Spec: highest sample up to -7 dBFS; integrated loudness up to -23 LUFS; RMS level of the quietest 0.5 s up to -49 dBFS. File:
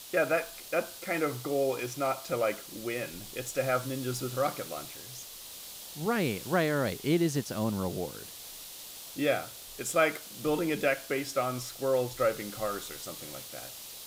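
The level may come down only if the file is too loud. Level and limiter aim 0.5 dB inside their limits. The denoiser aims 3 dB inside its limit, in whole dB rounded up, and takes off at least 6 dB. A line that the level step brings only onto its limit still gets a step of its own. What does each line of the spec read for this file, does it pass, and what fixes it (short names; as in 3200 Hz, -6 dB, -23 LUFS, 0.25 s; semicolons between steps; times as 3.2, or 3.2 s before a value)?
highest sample -12.5 dBFS: OK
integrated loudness -31.5 LUFS: OK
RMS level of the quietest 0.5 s -45 dBFS: fail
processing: denoiser 7 dB, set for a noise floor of -45 dBFS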